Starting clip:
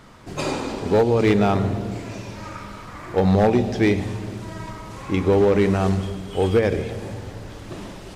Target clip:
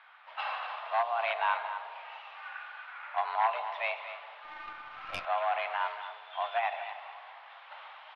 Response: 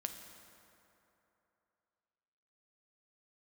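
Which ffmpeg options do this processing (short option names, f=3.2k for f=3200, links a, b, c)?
-filter_complex "[0:a]highpass=f=570:t=q:w=0.5412,highpass=f=570:t=q:w=1.307,lowpass=f=3.2k:t=q:w=0.5176,lowpass=f=3.2k:t=q:w=0.7071,lowpass=f=3.2k:t=q:w=1.932,afreqshift=240,aecho=1:1:234:0.266,asettb=1/sr,asplit=3[a][b][c];[a]atrim=end=4.444[d];[b]atrim=start=4.44:end=5.25,asetpts=PTS-STARTPTS,afade=t=in:d=0.004:c=qsin,afade=t=out:st=0.806:d=0.004:c=qsin,aeval=exprs='0.141*(cos(1*acos(clip(val(0)/0.141,-1,1)))-cos(1*PI/2))+0.0282*(cos(4*acos(clip(val(0)/0.141,-1,1)))-cos(4*PI/2))':c=same[e];[c]atrim=start=5.246[f];[d][e]acrossfade=d=0.004:c1=hsin:c2=qsin[g];[g][f]acrossfade=d=0.004:c1=qsin:c2=hsin,volume=-5.5dB"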